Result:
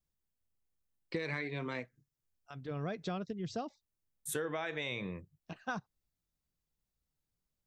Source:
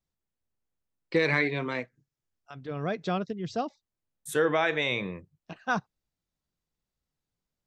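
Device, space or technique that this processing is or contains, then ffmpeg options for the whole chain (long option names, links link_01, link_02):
ASMR close-microphone chain: -af "lowshelf=frequency=130:gain=7,acompressor=threshold=-29dB:ratio=6,highshelf=frequency=8000:gain=8,volume=-5dB"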